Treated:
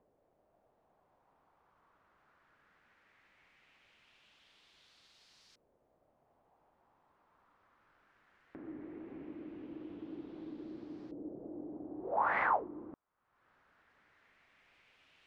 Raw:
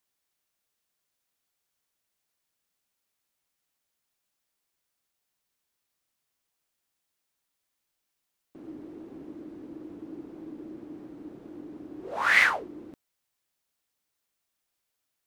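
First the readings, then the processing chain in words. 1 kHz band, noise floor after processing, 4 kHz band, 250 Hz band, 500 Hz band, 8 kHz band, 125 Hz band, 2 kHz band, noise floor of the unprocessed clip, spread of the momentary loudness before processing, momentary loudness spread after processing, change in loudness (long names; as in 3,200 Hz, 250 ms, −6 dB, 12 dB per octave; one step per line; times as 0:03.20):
−1.0 dB, −75 dBFS, −22.0 dB, −3.5 dB, −1.0 dB, below −20 dB, −4.0 dB, −14.5 dB, −82 dBFS, 23 LU, 17 LU, −16.5 dB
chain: upward compression, threshold −41 dBFS
auto-filter low-pass saw up 0.18 Hz 540–5,000 Hz
level −4.5 dB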